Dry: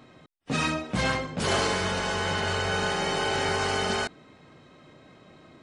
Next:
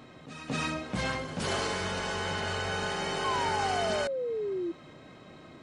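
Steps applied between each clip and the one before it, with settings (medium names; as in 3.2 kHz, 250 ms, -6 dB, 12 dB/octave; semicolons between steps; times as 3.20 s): pre-echo 230 ms -18.5 dB; compression 1.5:1, threshold -44 dBFS, peak gain reduction 8.5 dB; painted sound fall, 3.24–4.72 s, 330–1100 Hz -34 dBFS; trim +2 dB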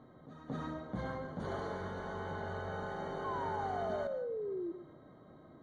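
boxcar filter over 17 samples; reverberation RT60 0.45 s, pre-delay 91 ms, DRR 10.5 dB; trim -6 dB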